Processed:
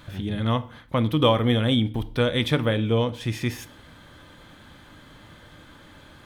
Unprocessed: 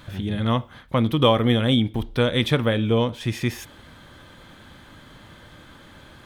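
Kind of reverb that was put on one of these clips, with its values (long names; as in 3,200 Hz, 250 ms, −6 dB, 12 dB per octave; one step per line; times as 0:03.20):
feedback delay network reverb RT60 0.51 s, low-frequency decay 1.2×, high-frequency decay 0.8×, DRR 14 dB
level −2 dB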